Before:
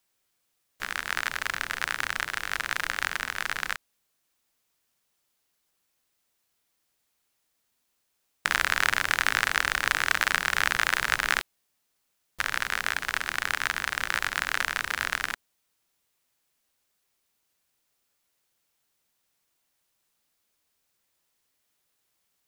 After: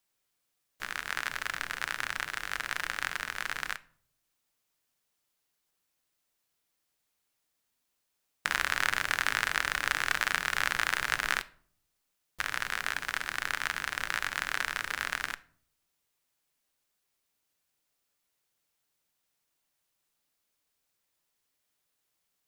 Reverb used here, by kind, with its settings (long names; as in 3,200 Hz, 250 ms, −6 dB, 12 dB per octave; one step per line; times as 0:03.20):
rectangular room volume 640 cubic metres, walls furnished, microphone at 0.41 metres
level −4.5 dB